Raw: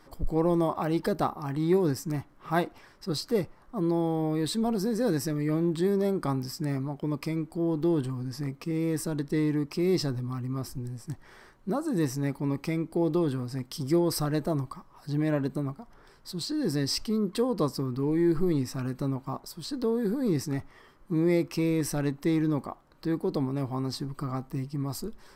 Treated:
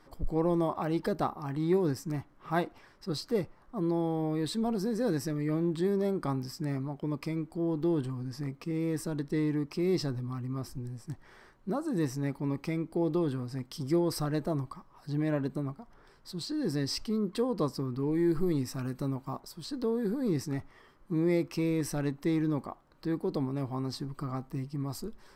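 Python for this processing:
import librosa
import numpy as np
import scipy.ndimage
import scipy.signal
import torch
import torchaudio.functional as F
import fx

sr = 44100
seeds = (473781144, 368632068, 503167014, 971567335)

y = fx.high_shelf(x, sr, hz=7000.0, db=fx.steps((0.0, -5.5), (18.13, 3.0), (19.39, -3.5)))
y = y * librosa.db_to_amplitude(-3.0)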